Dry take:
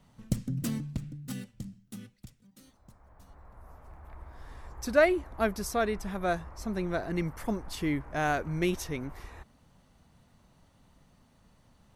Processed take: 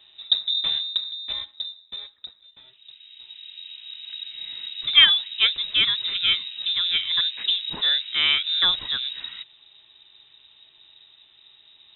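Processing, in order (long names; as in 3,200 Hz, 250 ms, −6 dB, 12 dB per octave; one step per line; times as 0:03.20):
voice inversion scrambler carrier 3,800 Hz
level +7.5 dB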